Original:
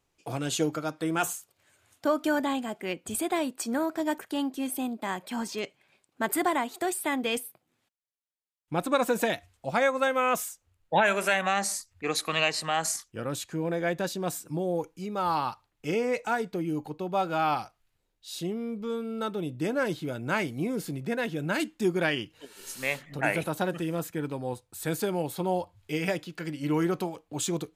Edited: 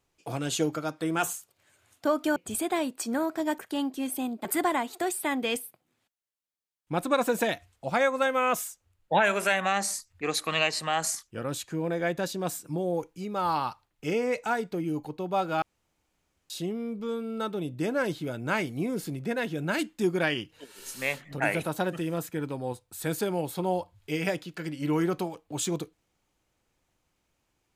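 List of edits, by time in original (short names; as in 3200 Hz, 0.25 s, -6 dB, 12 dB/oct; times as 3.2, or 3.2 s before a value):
2.36–2.96 cut
5.05–6.26 cut
17.43–18.31 room tone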